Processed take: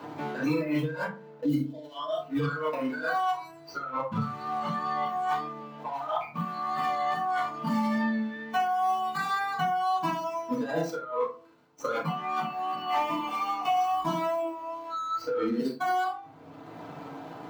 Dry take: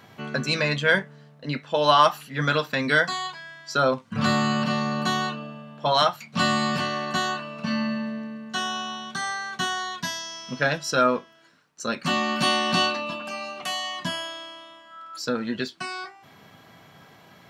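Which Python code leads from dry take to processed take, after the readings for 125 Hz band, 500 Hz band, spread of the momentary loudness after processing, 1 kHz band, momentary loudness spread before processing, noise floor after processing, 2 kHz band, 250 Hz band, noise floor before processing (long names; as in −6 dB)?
−6.0 dB, −5.5 dB, 10 LU, −1.0 dB, 13 LU, −49 dBFS, −10.0 dB, −3.0 dB, −52 dBFS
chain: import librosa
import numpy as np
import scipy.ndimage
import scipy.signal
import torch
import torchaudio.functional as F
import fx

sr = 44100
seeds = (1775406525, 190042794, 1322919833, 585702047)

p1 = scipy.signal.medfilt(x, 25)
p2 = fx.spec_box(p1, sr, start_s=1.46, length_s=0.76, low_hz=730.0, high_hz=2900.0, gain_db=-11)
p3 = fx.highpass(p2, sr, hz=400.0, slope=6)
p4 = fx.peak_eq(p3, sr, hz=9600.0, db=-9.5, octaves=1.5)
p5 = p4 + fx.room_early_taps(p4, sr, ms=(43, 73), db=(-6.5, -10.5), dry=0)
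p6 = fx.dynamic_eq(p5, sr, hz=1700.0, q=1.4, threshold_db=-40.0, ratio=4.0, max_db=5)
p7 = fx.over_compress(p6, sr, threshold_db=-35.0, ratio=-1.0)
p8 = fx.noise_reduce_blind(p7, sr, reduce_db=14)
p9 = fx.wow_flutter(p8, sr, seeds[0], rate_hz=2.1, depth_cents=19.0)
p10 = fx.rev_fdn(p9, sr, rt60_s=0.32, lf_ratio=1.25, hf_ratio=0.5, size_ms=20.0, drr_db=-4.0)
y = fx.band_squash(p10, sr, depth_pct=70)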